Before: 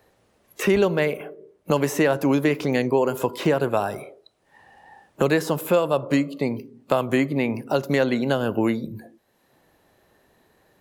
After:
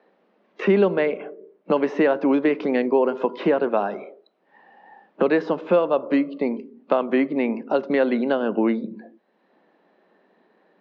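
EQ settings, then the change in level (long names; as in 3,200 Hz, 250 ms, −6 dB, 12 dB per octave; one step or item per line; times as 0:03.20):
elliptic high-pass filter 190 Hz, stop band 50 dB
Butterworth low-pass 6,600 Hz 48 dB per octave
high-frequency loss of the air 340 metres
+2.5 dB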